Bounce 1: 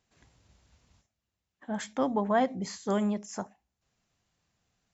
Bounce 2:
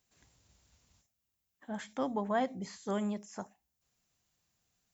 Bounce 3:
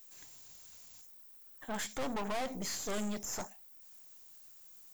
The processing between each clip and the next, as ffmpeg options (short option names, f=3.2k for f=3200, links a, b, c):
-filter_complex "[0:a]aemphasis=mode=production:type=50fm,acrossover=split=3600[a][b];[b]acompressor=threshold=-48dB:ratio=4:attack=1:release=60[c];[a][c]amix=inputs=2:normalize=0,volume=-5.5dB"
-af "aemphasis=mode=production:type=bsi,aeval=exprs='(tanh(178*val(0)+0.7)-tanh(0.7))/178':c=same,volume=10.5dB"